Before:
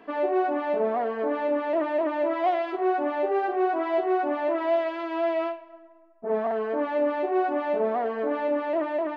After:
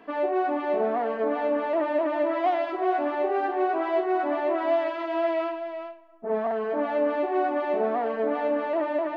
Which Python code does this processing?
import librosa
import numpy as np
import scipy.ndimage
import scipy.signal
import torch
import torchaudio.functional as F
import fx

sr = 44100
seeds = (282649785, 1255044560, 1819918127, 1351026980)

p1 = fx.peak_eq(x, sr, hz=390.0, db=-2.5, octaves=0.3)
y = p1 + fx.echo_single(p1, sr, ms=392, db=-9.0, dry=0)